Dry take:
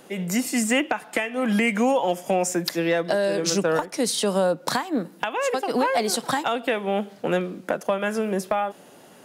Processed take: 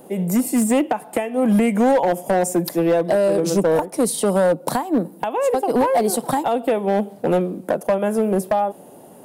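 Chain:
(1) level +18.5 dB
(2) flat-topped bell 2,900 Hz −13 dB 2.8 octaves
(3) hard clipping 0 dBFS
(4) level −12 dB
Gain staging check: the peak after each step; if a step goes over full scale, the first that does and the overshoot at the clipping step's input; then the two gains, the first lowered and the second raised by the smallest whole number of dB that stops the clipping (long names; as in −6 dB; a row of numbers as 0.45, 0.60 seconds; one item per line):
+7.0, +7.0, 0.0, −12.0 dBFS
step 1, 7.0 dB
step 1 +11.5 dB, step 4 −5 dB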